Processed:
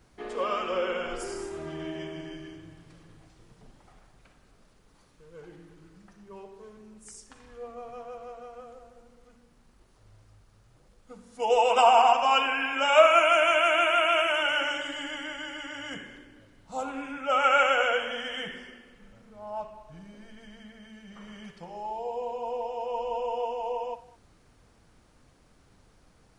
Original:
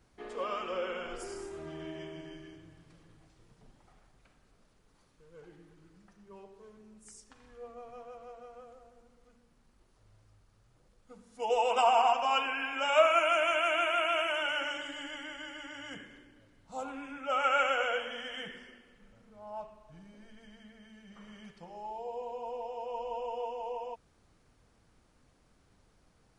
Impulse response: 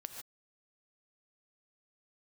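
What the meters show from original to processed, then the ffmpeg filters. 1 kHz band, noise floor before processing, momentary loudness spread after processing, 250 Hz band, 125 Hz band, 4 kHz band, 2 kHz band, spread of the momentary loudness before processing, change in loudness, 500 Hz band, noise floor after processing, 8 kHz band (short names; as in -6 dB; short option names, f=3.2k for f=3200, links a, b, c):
+6.0 dB, -67 dBFS, 22 LU, +6.5 dB, n/a, +6.0 dB, +6.0 dB, 23 LU, +6.0 dB, +6.0 dB, -61 dBFS, +6.0 dB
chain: -filter_complex "[0:a]asplit=2[a][b];[1:a]atrim=start_sample=2205,adelay=59[c];[b][c]afir=irnorm=-1:irlink=0,volume=-10.5dB[d];[a][d]amix=inputs=2:normalize=0,volume=6dB"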